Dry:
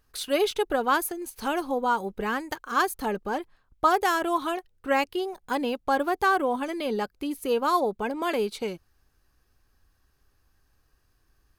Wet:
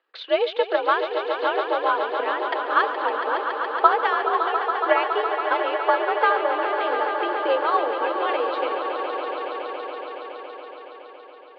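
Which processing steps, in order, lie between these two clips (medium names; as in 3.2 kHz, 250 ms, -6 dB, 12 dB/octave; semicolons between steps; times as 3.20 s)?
transient shaper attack +8 dB, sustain +4 dB; mistuned SSB +57 Hz 320–3600 Hz; echo with a slow build-up 140 ms, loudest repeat 5, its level -10 dB; trim -1 dB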